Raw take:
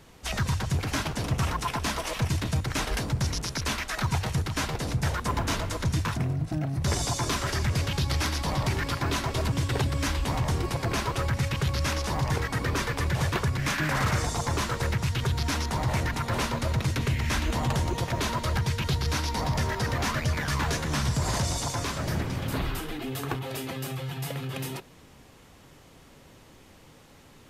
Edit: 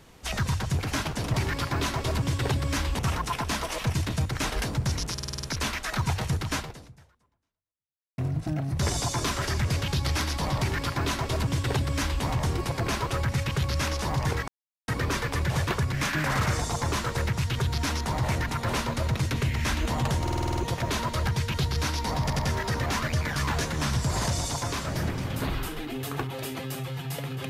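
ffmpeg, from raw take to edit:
ffmpeg -i in.wav -filter_complex "[0:a]asplit=20[link_01][link_02][link_03][link_04][link_05][link_06][link_07][link_08][link_09][link_10][link_11][link_12][link_13][link_14][link_15][link_16][link_17][link_18][link_19][link_20];[link_01]atrim=end=1.342[link_21];[link_02]atrim=start=8.638:end=10.292[link_22];[link_03]atrim=start=1.338:end=3.532[link_23];[link_04]atrim=start=3.478:end=3.532[link_24];[link_05]atrim=start=3.478:end=3.532[link_25];[link_06]atrim=start=3.478:end=3.532[link_26];[link_07]atrim=start=3.478:end=3.532[link_27];[link_08]atrim=start=3.478:end=3.532[link_28];[link_09]atrim=start=3.478:end=6.23,asetpts=PTS-STARTPTS,afade=type=out:start_time=1.122:duration=1.63:curve=exp[link_29];[link_10]atrim=start=6.23:end=12.53,asetpts=PTS-STARTPTS,afade=type=in:duration=0.004:curve=hsin,afade=type=out:start_time=6.296:duration=0.004:curve=hsin,apad=pad_dur=0.4[link_30];[link_11]atrim=start=12.53:end=17.922,asetpts=PTS-STARTPTS,afade=type=in:duration=0.004:curve=hsin[link_31];[link_12]atrim=start=17.868:end=17.922[link_32];[link_13]atrim=start=17.868:end=17.922[link_33];[link_14]atrim=start=17.868:end=17.922[link_34];[link_15]atrim=start=17.868:end=17.922[link_35];[link_16]atrim=start=17.868:end=17.922[link_36];[link_17]atrim=start=17.868:end=17.922[link_37];[link_18]atrim=start=17.868:end=19.602[link_38];[link_19]atrim=start=19.508:end=19.602[link_39];[link_20]atrim=start=19.508[link_40];[link_21][link_22]acrossfade=duration=0.004:curve1=hsin:curve2=hsin[link_41];[link_41][link_23]acrossfade=duration=0.004:curve1=hsin:curve2=hsin[link_42];[link_42][link_24]acrossfade=duration=0.004:curve1=hsin:curve2=hsin[link_43];[link_43][link_25]acrossfade=duration=0.004:curve1=hsin:curve2=hsin[link_44];[link_44][link_26]acrossfade=duration=0.004:curve1=hsin:curve2=hsin[link_45];[link_45][link_27]acrossfade=duration=0.004:curve1=hsin:curve2=hsin[link_46];[link_46][link_28]acrossfade=duration=0.004:curve1=hsin:curve2=hsin[link_47];[link_29][link_30][link_31]concat=n=3:v=0:a=1[link_48];[link_47][link_48]acrossfade=duration=0.004:curve1=hsin:curve2=hsin[link_49];[link_49][link_32]acrossfade=duration=0.004:curve1=hsin:curve2=hsin[link_50];[link_50][link_33]acrossfade=duration=0.004:curve1=hsin:curve2=hsin[link_51];[link_51][link_34]acrossfade=duration=0.004:curve1=hsin:curve2=hsin[link_52];[link_52][link_35]acrossfade=duration=0.004:curve1=hsin:curve2=hsin[link_53];[link_53][link_36]acrossfade=duration=0.004:curve1=hsin:curve2=hsin[link_54];[link_54][link_37]acrossfade=duration=0.004:curve1=hsin:curve2=hsin[link_55];[link_55][link_38]acrossfade=duration=0.004:curve1=hsin:curve2=hsin[link_56];[link_56][link_39]acrossfade=duration=0.004:curve1=hsin:curve2=hsin[link_57];[link_57][link_40]acrossfade=duration=0.004:curve1=hsin:curve2=hsin" out.wav

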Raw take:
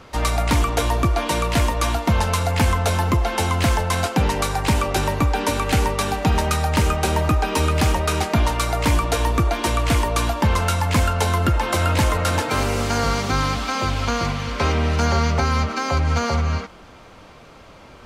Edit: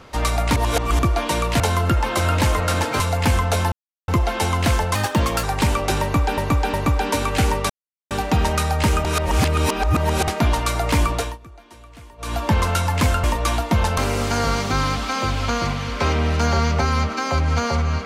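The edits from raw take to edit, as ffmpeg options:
ffmpeg -i in.wav -filter_complex "[0:a]asplit=17[link_01][link_02][link_03][link_04][link_05][link_06][link_07][link_08][link_09][link_10][link_11][link_12][link_13][link_14][link_15][link_16][link_17];[link_01]atrim=end=0.562[link_18];[link_02]atrim=start=0.558:end=0.992,asetpts=PTS-STARTPTS,areverse[link_19];[link_03]atrim=start=0.988:end=1.602[link_20];[link_04]atrim=start=11.168:end=12.572[link_21];[link_05]atrim=start=2.338:end=3.06,asetpts=PTS-STARTPTS,afade=type=out:start_time=0.718:duration=0.004:curve=hsin,apad=pad_dur=0.36[link_22];[link_06]atrim=start=3.06:end=3.934,asetpts=PTS-STARTPTS,afade=type=in:duration=0.004:curve=hsin[link_23];[link_07]atrim=start=3.93:end=4.5,asetpts=PTS-STARTPTS,asetrate=51597,aresample=44100[link_24];[link_08]atrim=start=4.496:end=5.442[link_25];[link_09]atrim=start=5.078:end=5.442[link_26];[link_10]atrim=start=5.078:end=6.04,asetpts=PTS-STARTPTS,afade=type=out:start_time=0.958:duration=0.004:curve=hsin,apad=pad_dur=0.41[link_27];[link_11]atrim=start=6.04:end=6.982,asetpts=PTS-STARTPTS,afade=type=in:duration=0.004:curve=hsin[link_28];[link_12]atrim=start=6.978:end=8.212,asetpts=PTS-STARTPTS,areverse[link_29];[link_13]atrim=start=8.208:end=9.31,asetpts=PTS-STARTPTS,afade=type=out:start_time=0.852:duration=0.25:silence=0.0630957[link_30];[link_14]atrim=start=9.31:end=10.11,asetpts=PTS-STARTPTS,volume=-24dB[link_31];[link_15]atrim=start=10.11:end=11.172,asetpts=PTS-STARTPTS,afade=type=in:duration=0.25:silence=0.0630957[link_32];[link_16]atrim=start=1.598:end=2.342[link_33];[link_17]atrim=start=12.568[link_34];[link_18][link_19]acrossfade=duration=0.004:curve1=hsin:curve2=hsin[link_35];[link_35][link_20]acrossfade=duration=0.004:curve1=hsin:curve2=hsin[link_36];[link_36][link_21]acrossfade=duration=0.004:curve1=hsin:curve2=hsin[link_37];[link_22][link_23]concat=n=2:v=0:a=1[link_38];[link_37][link_38]acrossfade=duration=0.004:curve1=hsin:curve2=hsin[link_39];[link_39][link_24]acrossfade=duration=0.004:curve1=hsin:curve2=hsin[link_40];[link_40][link_25]acrossfade=duration=0.004:curve1=hsin:curve2=hsin[link_41];[link_41][link_26]acrossfade=duration=0.004:curve1=hsin:curve2=hsin[link_42];[link_27][link_28]concat=n=2:v=0:a=1[link_43];[link_42][link_43]acrossfade=duration=0.004:curve1=hsin:curve2=hsin[link_44];[link_44][link_29]acrossfade=duration=0.004:curve1=hsin:curve2=hsin[link_45];[link_30][link_31][link_32]concat=n=3:v=0:a=1[link_46];[link_45][link_46]acrossfade=duration=0.004:curve1=hsin:curve2=hsin[link_47];[link_47][link_33]acrossfade=duration=0.004:curve1=hsin:curve2=hsin[link_48];[link_48][link_34]acrossfade=duration=0.004:curve1=hsin:curve2=hsin" out.wav

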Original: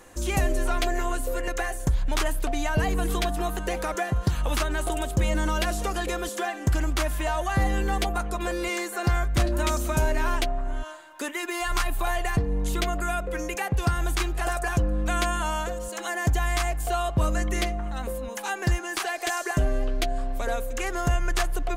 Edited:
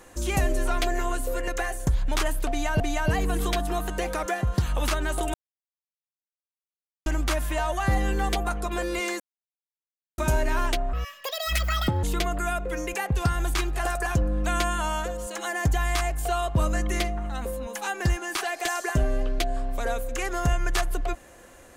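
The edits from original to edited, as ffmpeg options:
ffmpeg -i in.wav -filter_complex "[0:a]asplit=8[link_01][link_02][link_03][link_04][link_05][link_06][link_07][link_08];[link_01]atrim=end=2.802[link_09];[link_02]atrim=start=2.488:end=5.03,asetpts=PTS-STARTPTS,afade=type=out:start_time=2.538:duration=0.004:curve=hsin[link_10];[link_03]atrim=start=5.03:end=6.75,asetpts=PTS-STARTPTS,volume=0[link_11];[link_04]atrim=start=6.75:end=8.89,asetpts=PTS-STARTPTS,afade=type=in:duration=0.004:curve=hsin,afade=type=out:start_time=2.136:duration=0.004:curve=hsin[link_12];[link_05]atrim=start=8.89:end=9.87,asetpts=PTS-STARTPTS,volume=0[link_13];[link_06]atrim=start=9.87:end=10.624,asetpts=PTS-STARTPTS,afade=type=in:duration=0.004:curve=hsin[link_14];[link_07]atrim=start=10.62:end=12.65,asetpts=PTS-STARTPTS,asetrate=81144,aresample=44100[link_15];[link_08]atrim=start=12.646[link_16];[link_10][link_11][link_12][link_13][link_14]concat=n=5:v=0:a=1[link_17];[link_09][link_17]acrossfade=duration=0.004:curve1=hsin:curve2=hsin[link_18];[link_18][link_15]acrossfade=duration=0.004:curve1=hsin:curve2=hsin[link_19];[link_19][link_16]acrossfade=duration=0.004:curve1=hsin:curve2=hsin" out.wav

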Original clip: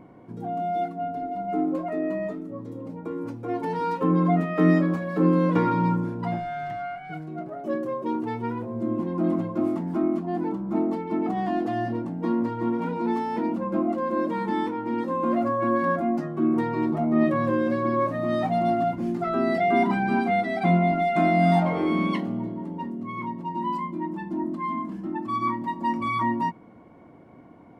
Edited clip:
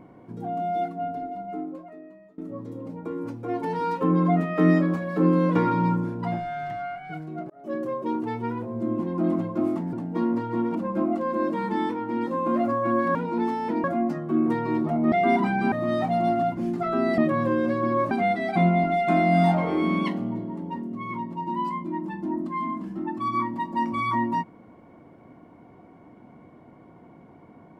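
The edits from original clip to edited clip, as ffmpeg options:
ffmpeg -i in.wav -filter_complex "[0:a]asplit=11[link_01][link_02][link_03][link_04][link_05][link_06][link_07][link_08][link_09][link_10][link_11];[link_01]atrim=end=2.38,asetpts=PTS-STARTPTS,afade=type=out:start_time=1.1:duration=1.28:curve=qua:silence=0.0630957[link_12];[link_02]atrim=start=2.38:end=7.5,asetpts=PTS-STARTPTS,afade=type=in:duration=0.004:curve=hsin:silence=0.0630957,afade=type=out:start_time=5.116:duration=0.004:curve=hsin[link_13];[link_03]atrim=start=7.5:end=9.932,asetpts=PTS-STARTPTS,afade=type=in:duration=0.32[link_14];[link_04]atrim=start=12.008:end=12.832[link_15];[link_05]atrim=start=13.518:end=15.922[link_16];[link_06]atrim=start=12.828:end=13.522[link_17];[link_07]atrim=start=15.918:end=17.202[link_18];[link_08]atrim=start=19.588:end=20.192[link_19];[link_09]atrim=start=18.128:end=19.592[link_20];[link_10]atrim=start=17.198:end=18.132[link_21];[link_11]atrim=start=20.188[link_22];[link_12][link_13][link_14]concat=n=3:v=0:a=1[link_23];[link_23][link_15]acrossfade=duration=0.004:curve1=hsin:curve2=hsin[link_24];[link_24][link_16]acrossfade=duration=0.004:curve1=hsin:curve2=hsin[link_25];[link_25][link_17]acrossfade=duration=0.004:curve1=hsin:curve2=hsin[link_26];[link_26][link_18]acrossfade=duration=0.004:curve1=hsin:curve2=hsin[link_27];[link_27][link_19]acrossfade=duration=0.004:curve1=hsin:curve2=hsin[link_28];[link_28][link_20]acrossfade=duration=0.004:curve1=hsin:curve2=hsin[link_29];[link_29][link_21]acrossfade=duration=0.004:curve1=hsin:curve2=hsin[link_30];[link_30][link_22]acrossfade=duration=0.004:curve1=hsin:curve2=hsin" out.wav

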